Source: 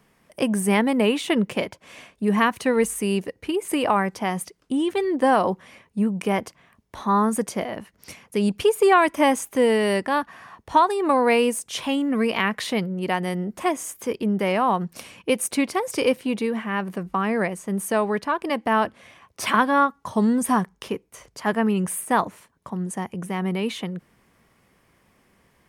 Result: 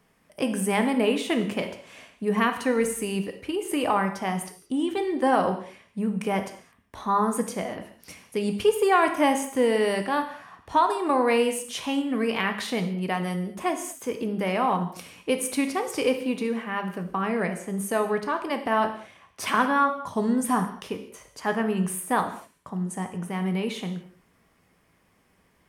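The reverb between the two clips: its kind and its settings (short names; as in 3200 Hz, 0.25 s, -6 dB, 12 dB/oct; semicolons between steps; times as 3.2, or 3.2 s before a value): non-linear reverb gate 0.25 s falling, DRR 5.5 dB; gain -4 dB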